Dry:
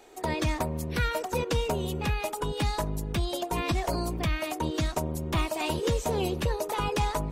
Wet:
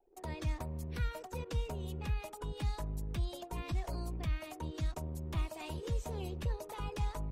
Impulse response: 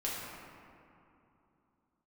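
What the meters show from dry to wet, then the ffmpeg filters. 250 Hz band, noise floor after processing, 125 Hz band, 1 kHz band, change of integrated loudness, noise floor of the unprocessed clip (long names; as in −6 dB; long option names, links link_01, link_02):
−12.5 dB, −51 dBFS, −6.5 dB, −14.5 dB, −10.0 dB, −39 dBFS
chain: -filter_complex "[0:a]anlmdn=0.0631,acrossover=split=130[link_01][link_02];[link_02]acompressor=threshold=-56dB:ratio=1.5[link_03];[link_01][link_03]amix=inputs=2:normalize=0,volume=-4.5dB"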